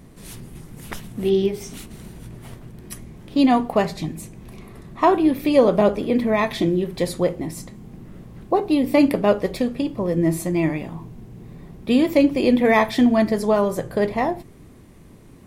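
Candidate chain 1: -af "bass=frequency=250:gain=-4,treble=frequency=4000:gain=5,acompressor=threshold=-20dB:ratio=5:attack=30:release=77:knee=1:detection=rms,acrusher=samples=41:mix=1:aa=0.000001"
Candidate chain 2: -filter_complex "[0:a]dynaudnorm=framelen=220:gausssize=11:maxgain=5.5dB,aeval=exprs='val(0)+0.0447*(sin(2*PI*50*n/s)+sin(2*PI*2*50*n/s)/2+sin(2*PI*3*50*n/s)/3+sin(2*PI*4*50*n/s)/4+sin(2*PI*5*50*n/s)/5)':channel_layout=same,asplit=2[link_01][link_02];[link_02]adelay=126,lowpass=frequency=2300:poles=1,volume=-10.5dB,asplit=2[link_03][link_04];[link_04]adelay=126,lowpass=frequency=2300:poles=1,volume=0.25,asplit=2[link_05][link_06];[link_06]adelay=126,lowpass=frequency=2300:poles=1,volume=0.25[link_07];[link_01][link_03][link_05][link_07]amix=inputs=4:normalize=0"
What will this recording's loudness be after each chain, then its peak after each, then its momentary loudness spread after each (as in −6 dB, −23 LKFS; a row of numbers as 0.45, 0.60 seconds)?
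−24.0, −17.0 LKFS; −10.0, −1.0 dBFS; 21, 17 LU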